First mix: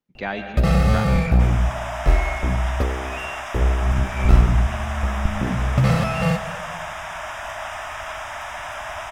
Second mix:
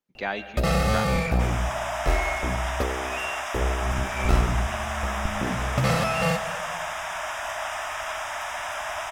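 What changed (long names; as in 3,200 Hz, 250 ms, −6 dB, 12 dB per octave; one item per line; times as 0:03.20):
speech: send −7.5 dB
master: add bass and treble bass −8 dB, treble +4 dB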